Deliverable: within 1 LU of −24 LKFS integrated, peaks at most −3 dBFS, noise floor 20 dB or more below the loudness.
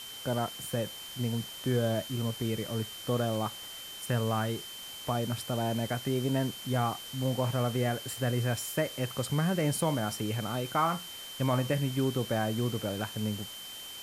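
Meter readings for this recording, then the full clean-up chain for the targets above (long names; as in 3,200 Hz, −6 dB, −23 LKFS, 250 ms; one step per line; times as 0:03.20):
interfering tone 3,100 Hz; level of the tone −43 dBFS; background noise floor −44 dBFS; target noise floor −52 dBFS; integrated loudness −32.0 LKFS; sample peak −16.0 dBFS; target loudness −24.0 LKFS
→ notch filter 3,100 Hz, Q 30
broadband denoise 8 dB, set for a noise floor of −44 dBFS
level +8 dB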